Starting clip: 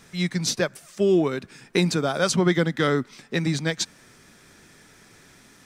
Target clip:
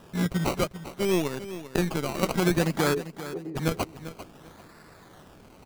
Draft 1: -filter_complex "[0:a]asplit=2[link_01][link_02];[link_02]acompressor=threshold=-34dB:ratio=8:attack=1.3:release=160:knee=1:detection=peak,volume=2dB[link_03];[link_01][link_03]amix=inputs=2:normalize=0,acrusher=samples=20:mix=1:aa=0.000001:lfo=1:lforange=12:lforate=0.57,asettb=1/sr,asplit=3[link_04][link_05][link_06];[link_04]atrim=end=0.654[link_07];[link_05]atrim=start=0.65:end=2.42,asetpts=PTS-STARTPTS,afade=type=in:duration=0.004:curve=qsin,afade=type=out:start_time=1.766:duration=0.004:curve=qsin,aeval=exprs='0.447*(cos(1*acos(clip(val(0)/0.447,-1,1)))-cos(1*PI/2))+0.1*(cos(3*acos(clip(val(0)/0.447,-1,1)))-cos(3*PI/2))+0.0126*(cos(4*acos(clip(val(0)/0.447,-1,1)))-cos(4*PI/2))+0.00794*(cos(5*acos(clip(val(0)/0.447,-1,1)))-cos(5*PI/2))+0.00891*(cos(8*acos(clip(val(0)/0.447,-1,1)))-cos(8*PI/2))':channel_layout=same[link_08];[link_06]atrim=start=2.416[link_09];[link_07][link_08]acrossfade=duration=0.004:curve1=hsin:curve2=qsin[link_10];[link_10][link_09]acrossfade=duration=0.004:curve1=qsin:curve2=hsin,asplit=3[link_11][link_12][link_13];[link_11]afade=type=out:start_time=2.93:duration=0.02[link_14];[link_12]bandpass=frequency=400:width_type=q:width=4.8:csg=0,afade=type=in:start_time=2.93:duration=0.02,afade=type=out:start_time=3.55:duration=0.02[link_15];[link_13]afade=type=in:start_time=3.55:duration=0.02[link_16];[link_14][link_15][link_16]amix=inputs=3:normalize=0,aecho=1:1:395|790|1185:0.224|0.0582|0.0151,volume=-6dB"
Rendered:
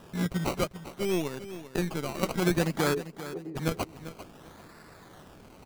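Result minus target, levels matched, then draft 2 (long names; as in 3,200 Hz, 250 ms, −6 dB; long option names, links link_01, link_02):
downward compressor: peak gain reduction +10 dB
-filter_complex "[0:a]asplit=2[link_01][link_02];[link_02]acompressor=threshold=-22.5dB:ratio=8:attack=1.3:release=160:knee=1:detection=peak,volume=2dB[link_03];[link_01][link_03]amix=inputs=2:normalize=0,acrusher=samples=20:mix=1:aa=0.000001:lfo=1:lforange=12:lforate=0.57,asettb=1/sr,asplit=3[link_04][link_05][link_06];[link_04]atrim=end=0.654[link_07];[link_05]atrim=start=0.65:end=2.42,asetpts=PTS-STARTPTS,afade=type=in:duration=0.004:curve=qsin,afade=type=out:start_time=1.766:duration=0.004:curve=qsin,aeval=exprs='0.447*(cos(1*acos(clip(val(0)/0.447,-1,1)))-cos(1*PI/2))+0.1*(cos(3*acos(clip(val(0)/0.447,-1,1)))-cos(3*PI/2))+0.0126*(cos(4*acos(clip(val(0)/0.447,-1,1)))-cos(4*PI/2))+0.00794*(cos(5*acos(clip(val(0)/0.447,-1,1)))-cos(5*PI/2))+0.00891*(cos(8*acos(clip(val(0)/0.447,-1,1)))-cos(8*PI/2))':channel_layout=same[link_08];[link_06]atrim=start=2.416[link_09];[link_07][link_08]acrossfade=duration=0.004:curve1=hsin:curve2=qsin[link_10];[link_10][link_09]acrossfade=duration=0.004:curve1=qsin:curve2=hsin,asplit=3[link_11][link_12][link_13];[link_11]afade=type=out:start_time=2.93:duration=0.02[link_14];[link_12]bandpass=frequency=400:width_type=q:width=4.8:csg=0,afade=type=in:start_time=2.93:duration=0.02,afade=type=out:start_time=3.55:duration=0.02[link_15];[link_13]afade=type=in:start_time=3.55:duration=0.02[link_16];[link_14][link_15][link_16]amix=inputs=3:normalize=0,aecho=1:1:395|790|1185:0.224|0.0582|0.0151,volume=-6dB"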